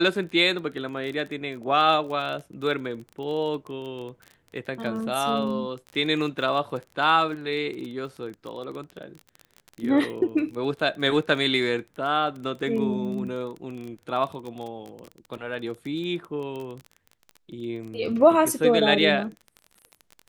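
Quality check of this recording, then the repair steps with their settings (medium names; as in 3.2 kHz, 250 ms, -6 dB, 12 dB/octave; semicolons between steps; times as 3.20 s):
crackle 21 per s -32 dBFS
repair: de-click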